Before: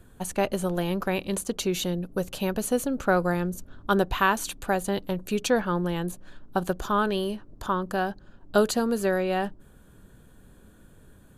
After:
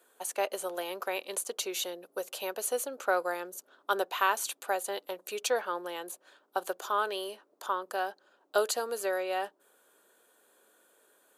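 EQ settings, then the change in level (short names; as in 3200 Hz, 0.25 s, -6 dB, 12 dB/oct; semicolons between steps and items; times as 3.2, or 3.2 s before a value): HPF 430 Hz 24 dB/oct; high shelf 6500 Hz +5 dB; notch 1700 Hz, Q 24; -4.0 dB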